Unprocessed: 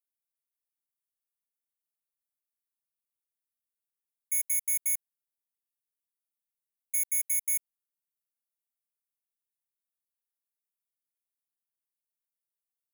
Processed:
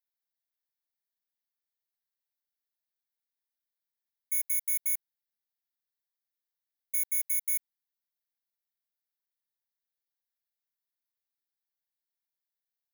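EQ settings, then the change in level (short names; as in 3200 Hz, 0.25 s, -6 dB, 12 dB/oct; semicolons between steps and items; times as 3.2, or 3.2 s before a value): HPF 820 Hz; fixed phaser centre 1800 Hz, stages 8; +1.5 dB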